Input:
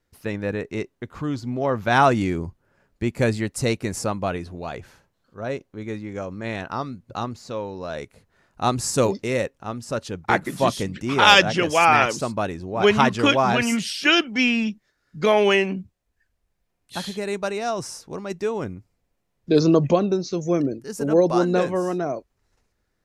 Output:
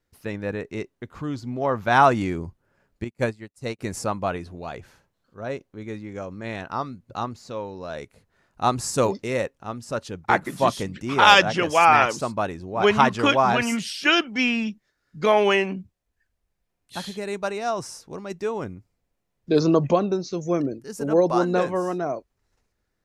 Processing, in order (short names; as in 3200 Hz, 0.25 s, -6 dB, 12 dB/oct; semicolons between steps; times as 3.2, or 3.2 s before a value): dynamic EQ 1000 Hz, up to +5 dB, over -31 dBFS, Q 0.95; 3.04–3.79 upward expander 2.5:1, over -34 dBFS; gain -3 dB